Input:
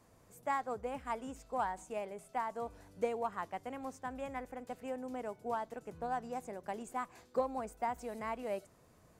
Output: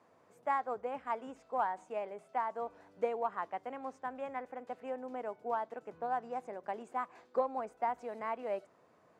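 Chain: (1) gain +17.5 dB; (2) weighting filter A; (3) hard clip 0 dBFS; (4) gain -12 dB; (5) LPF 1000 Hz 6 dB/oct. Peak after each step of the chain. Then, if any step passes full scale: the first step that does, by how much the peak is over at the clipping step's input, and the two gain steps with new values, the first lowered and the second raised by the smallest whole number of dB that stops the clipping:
-3.5, -5.5, -5.5, -17.5, -20.0 dBFS; no overload

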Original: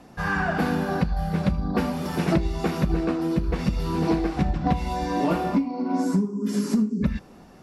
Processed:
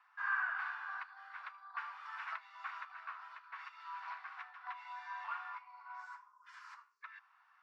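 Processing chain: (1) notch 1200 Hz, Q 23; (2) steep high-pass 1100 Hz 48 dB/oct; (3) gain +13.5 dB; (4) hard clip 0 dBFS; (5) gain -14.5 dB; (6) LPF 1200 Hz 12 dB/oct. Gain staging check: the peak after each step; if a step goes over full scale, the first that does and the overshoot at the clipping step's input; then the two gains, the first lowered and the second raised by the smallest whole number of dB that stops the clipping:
-12.5, -17.5, -4.0, -4.0, -18.5, -24.0 dBFS; no overload

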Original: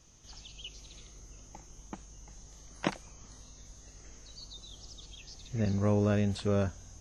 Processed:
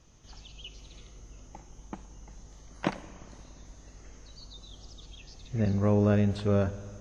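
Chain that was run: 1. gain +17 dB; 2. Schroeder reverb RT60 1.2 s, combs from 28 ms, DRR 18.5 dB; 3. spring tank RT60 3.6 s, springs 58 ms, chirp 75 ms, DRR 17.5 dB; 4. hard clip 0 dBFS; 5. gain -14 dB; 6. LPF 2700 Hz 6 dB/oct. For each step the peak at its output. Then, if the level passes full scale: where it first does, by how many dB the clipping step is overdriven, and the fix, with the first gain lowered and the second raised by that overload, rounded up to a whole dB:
+5.5, +5.5, +5.5, 0.0, -14.0, -14.0 dBFS; step 1, 5.5 dB; step 1 +11 dB, step 5 -8 dB

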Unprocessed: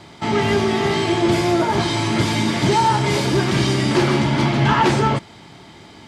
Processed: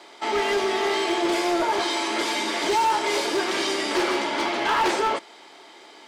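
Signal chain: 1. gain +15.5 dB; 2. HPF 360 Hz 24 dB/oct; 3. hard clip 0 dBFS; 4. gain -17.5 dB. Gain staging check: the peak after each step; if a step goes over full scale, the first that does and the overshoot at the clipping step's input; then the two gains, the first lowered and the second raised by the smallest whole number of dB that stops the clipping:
+9.5, +10.0, 0.0, -17.5 dBFS; step 1, 10.0 dB; step 1 +5.5 dB, step 4 -7.5 dB

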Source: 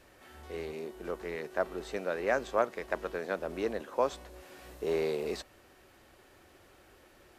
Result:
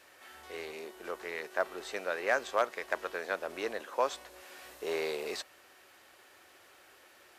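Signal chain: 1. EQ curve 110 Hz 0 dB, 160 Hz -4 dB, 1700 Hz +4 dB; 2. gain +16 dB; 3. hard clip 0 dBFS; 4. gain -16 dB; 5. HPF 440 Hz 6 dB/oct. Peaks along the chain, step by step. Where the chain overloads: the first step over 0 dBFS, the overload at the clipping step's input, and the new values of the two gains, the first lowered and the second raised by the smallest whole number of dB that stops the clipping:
-12.0, +4.0, 0.0, -16.0, -14.0 dBFS; step 2, 4.0 dB; step 2 +12 dB, step 4 -12 dB

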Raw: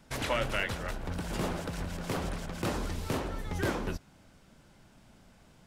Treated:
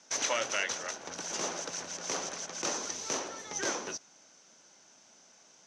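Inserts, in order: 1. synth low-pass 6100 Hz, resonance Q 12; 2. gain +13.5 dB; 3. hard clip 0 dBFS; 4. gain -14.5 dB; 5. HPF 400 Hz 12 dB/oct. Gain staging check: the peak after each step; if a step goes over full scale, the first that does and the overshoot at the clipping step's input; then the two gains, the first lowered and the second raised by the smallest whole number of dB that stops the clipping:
-15.0, -1.5, -1.5, -16.0, -15.0 dBFS; no overload

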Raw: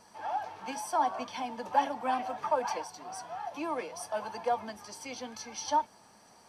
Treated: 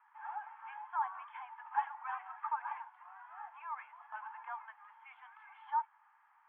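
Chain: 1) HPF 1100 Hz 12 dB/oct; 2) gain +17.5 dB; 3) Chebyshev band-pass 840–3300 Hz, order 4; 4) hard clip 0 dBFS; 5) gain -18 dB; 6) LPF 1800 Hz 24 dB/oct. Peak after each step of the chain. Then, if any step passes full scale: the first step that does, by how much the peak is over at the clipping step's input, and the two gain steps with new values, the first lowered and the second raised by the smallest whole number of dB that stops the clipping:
-19.5, -2.0, -2.5, -2.5, -20.5, -20.5 dBFS; no overload

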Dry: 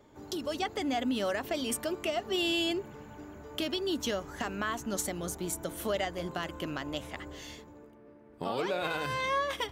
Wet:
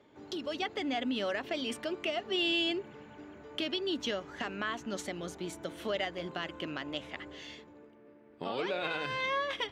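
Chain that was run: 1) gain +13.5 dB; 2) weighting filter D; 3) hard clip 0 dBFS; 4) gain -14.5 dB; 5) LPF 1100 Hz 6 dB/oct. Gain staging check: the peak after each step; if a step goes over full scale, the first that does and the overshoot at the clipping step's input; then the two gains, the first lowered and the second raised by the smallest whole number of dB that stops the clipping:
-5.5, +4.0, 0.0, -14.5, -20.5 dBFS; step 2, 4.0 dB; step 1 +9.5 dB, step 4 -10.5 dB

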